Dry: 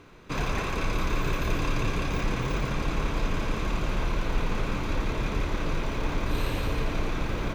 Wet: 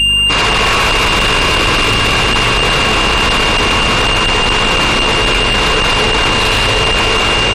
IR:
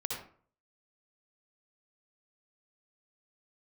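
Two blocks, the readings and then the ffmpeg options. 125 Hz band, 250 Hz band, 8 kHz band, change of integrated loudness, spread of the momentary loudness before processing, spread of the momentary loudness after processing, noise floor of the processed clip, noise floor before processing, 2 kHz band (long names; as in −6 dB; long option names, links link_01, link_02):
+11.0 dB, +12.5 dB, +23.5 dB, +20.0 dB, 2 LU, 0 LU, −12 dBFS, −31 dBFS, +24.0 dB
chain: -filter_complex "[1:a]atrim=start_sample=2205,asetrate=40572,aresample=44100[link_01];[0:a][link_01]afir=irnorm=-1:irlink=0,aresample=11025,asoftclip=type=hard:threshold=-24dB,aresample=44100,dynaudnorm=framelen=220:gausssize=5:maxgain=4.5dB,highshelf=frequency=2200:gain=5,aecho=1:1:359|718|1077|1436:0.1|0.053|0.0281|0.0149,aeval=exprs='val(0)+0.0251*sin(2*PI*2800*n/s)':channel_layout=same,asplit=2[link_02][link_03];[link_03]highpass=frequency=720:poles=1,volume=23dB,asoftclip=type=tanh:threshold=-14dB[link_04];[link_02][link_04]amix=inputs=2:normalize=0,lowpass=frequency=2400:poles=1,volume=-6dB,aeval=exprs='val(0)+0.0251*(sin(2*PI*50*n/s)+sin(2*PI*2*50*n/s)/2+sin(2*PI*3*50*n/s)/3+sin(2*PI*4*50*n/s)/4+sin(2*PI*5*50*n/s)/5)':channel_layout=same,aemphasis=mode=production:type=50kf,afftfilt=real='re*gte(hypot(re,im),0.0178)':imag='im*gte(hypot(re,im),0.0178)':win_size=1024:overlap=0.75,alimiter=level_in=22.5dB:limit=-1dB:release=50:level=0:latency=1,volume=-5.5dB"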